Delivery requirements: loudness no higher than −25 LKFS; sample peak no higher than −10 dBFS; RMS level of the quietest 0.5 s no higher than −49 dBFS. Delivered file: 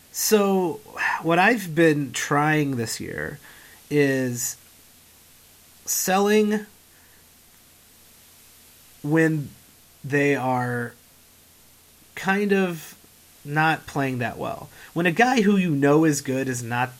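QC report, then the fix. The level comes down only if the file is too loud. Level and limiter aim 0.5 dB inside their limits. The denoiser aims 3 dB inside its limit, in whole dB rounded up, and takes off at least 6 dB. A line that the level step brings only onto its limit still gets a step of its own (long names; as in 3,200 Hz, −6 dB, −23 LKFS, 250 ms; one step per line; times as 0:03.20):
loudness −22.0 LKFS: out of spec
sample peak −5.5 dBFS: out of spec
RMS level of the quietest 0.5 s −53 dBFS: in spec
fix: level −3.5 dB
brickwall limiter −10.5 dBFS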